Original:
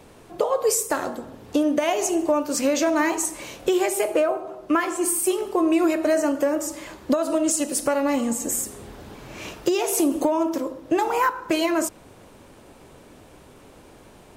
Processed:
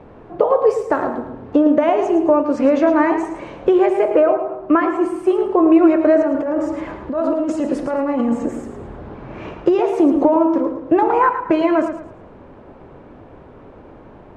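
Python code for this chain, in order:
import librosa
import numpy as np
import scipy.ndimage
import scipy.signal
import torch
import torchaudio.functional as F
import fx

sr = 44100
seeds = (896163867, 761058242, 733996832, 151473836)

y = scipy.signal.sosfilt(scipy.signal.butter(2, 1400.0, 'lowpass', fs=sr, output='sos'), x)
y = fx.over_compress(y, sr, threshold_db=-26.0, ratio=-1.0, at=(6.21, 8.46))
y = fx.echo_feedback(y, sr, ms=110, feedback_pct=33, wet_db=-9.5)
y = y * librosa.db_to_amplitude(7.0)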